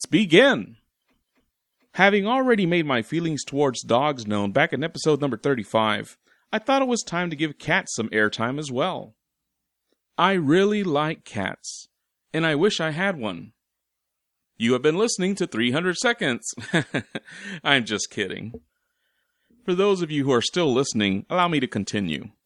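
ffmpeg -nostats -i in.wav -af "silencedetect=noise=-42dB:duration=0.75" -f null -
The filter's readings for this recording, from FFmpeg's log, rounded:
silence_start: 0.73
silence_end: 1.94 | silence_duration: 1.21
silence_start: 9.09
silence_end: 10.18 | silence_duration: 1.09
silence_start: 13.48
silence_end: 14.60 | silence_duration: 1.12
silence_start: 18.58
silence_end: 19.68 | silence_duration: 1.09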